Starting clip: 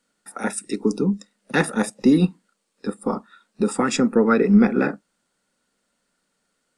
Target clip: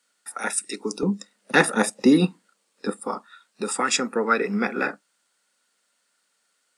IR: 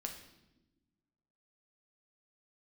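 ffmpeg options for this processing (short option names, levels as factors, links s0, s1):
-af "asetnsamples=n=441:p=0,asendcmd='1.03 highpass f 410;3 highpass f 1400',highpass=f=1400:p=1,volume=1.68"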